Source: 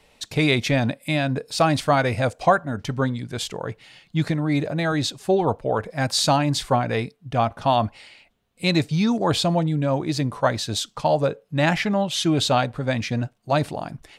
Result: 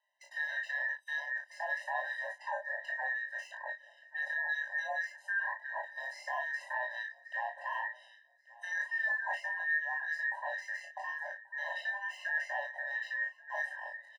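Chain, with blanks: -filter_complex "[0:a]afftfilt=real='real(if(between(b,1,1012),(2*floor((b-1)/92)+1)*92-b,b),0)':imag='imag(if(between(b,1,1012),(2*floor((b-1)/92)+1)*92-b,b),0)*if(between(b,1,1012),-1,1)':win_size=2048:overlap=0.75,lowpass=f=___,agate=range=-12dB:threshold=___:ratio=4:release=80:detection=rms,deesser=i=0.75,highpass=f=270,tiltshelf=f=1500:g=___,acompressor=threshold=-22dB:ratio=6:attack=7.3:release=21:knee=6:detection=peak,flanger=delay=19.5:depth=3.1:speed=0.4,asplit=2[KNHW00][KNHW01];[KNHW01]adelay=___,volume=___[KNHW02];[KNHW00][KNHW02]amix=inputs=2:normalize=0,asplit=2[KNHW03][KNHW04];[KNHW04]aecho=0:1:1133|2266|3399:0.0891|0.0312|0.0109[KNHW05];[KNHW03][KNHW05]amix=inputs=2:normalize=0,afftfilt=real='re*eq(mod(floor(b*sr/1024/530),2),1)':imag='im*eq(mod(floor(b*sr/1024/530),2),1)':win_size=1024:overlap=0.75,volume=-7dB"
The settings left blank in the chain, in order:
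9400, -45dB, 7.5, 34, -4.5dB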